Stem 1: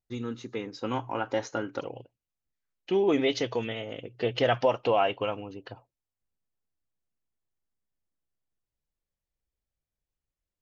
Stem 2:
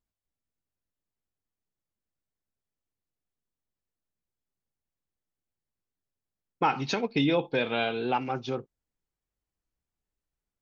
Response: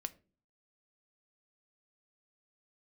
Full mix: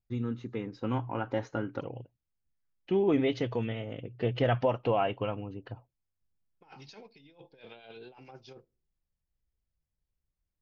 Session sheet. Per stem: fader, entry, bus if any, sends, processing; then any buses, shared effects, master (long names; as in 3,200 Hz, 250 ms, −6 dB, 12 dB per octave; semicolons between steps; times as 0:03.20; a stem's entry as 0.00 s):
−4.0 dB, 0.00 s, no send, bass and treble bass +10 dB, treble −13 dB
−19.0 dB, 0.00 s, send −5.5 dB, thirty-one-band graphic EQ 250 Hz −8 dB, 1,250 Hz −6 dB, 5,000 Hz +10 dB; two-band tremolo in antiphase 9 Hz, depth 50%, crossover 790 Hz; compressor whose output falls as the input rises −34 dBFS, ratio −0.5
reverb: on, pre-delay 5 ms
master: no processing